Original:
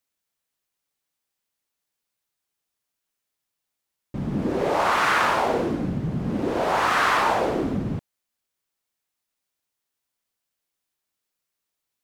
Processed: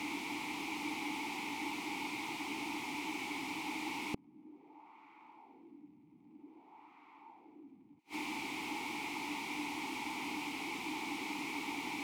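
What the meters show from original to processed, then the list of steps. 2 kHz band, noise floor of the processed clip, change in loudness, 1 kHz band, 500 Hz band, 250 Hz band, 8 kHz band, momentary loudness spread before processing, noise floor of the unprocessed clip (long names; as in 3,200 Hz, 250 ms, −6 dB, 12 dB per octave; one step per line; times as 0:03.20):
−12.0 dB, −62 dBFS, −17.0 dB, −16.5 dB, −22.5 dB, −11.5 dB, −6.5 dB, 10 LU, −83 dBFS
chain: converter with a step at zero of −26.5 dBFS
formant filter u
gate with flip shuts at −36 dBFS, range −40 dB
level +14 dB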